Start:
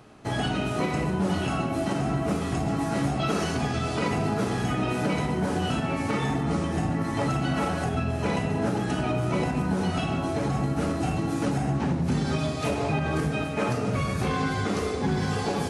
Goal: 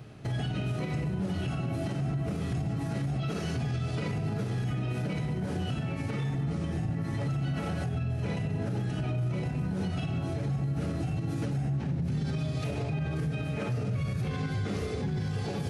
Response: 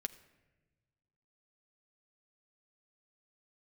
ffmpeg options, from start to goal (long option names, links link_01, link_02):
-af "equalizer=frequency=125:width_type=o:width=1:gain=11,equalizer=frequency=250:width_type=o:width=1:gain=-4,equalizer=frequency=1000:width_type=o:width=1:gain=-8,equalizer=frequency=8000:width_type=o:width=1:gain=-5,alimiter=level_in=1.5dB:limit=-24dB:level=0:latency=1:release=172,volume=-1.5dB,volume=1.5dB"